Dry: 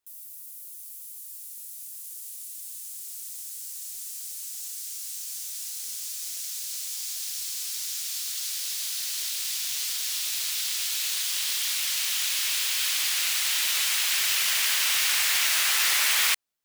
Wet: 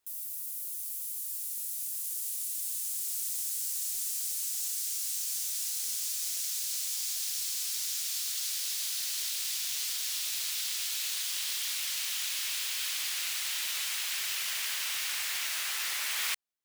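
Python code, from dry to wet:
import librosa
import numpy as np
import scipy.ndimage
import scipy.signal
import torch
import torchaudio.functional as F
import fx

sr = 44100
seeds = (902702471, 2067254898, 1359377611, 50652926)

y = fx.rider(x, sr, range_db=10, speed_s=0.5)
y = F.gain(torch.from_numpy(y), -5.5).numpy()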